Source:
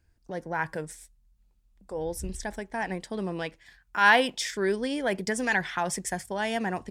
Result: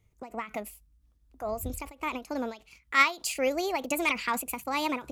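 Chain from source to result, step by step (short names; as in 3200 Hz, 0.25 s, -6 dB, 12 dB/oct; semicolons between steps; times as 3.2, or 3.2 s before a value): speed mistake 33 rpm record played at 45 rpm; ending taper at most 190 dB/s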